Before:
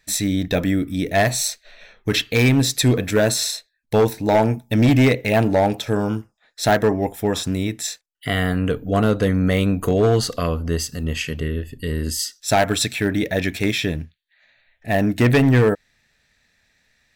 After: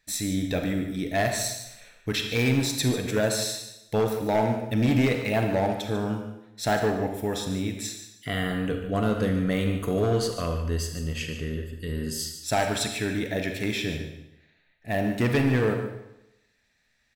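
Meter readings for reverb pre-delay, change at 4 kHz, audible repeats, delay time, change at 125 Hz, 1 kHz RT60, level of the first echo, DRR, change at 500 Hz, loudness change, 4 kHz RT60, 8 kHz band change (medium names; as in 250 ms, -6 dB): 34 ms, -6.5 dB, 1, 146 ms, -7.5 dB, 0.90 s, -11.5 dB, 4.0 dB, -7.0 dB, -7.0 dB, 0.80 s, -7.0 dB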